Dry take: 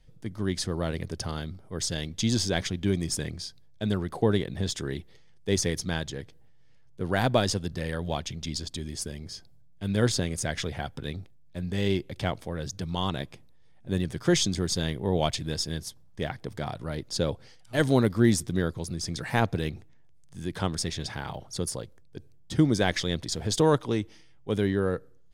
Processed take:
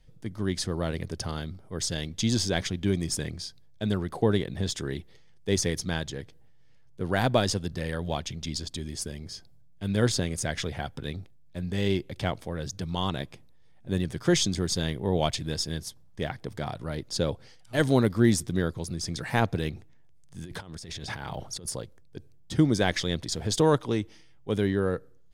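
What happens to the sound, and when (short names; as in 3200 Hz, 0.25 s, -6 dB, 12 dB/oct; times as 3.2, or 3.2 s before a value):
20.44–21.68 negative-ratio compressor -39 dBFS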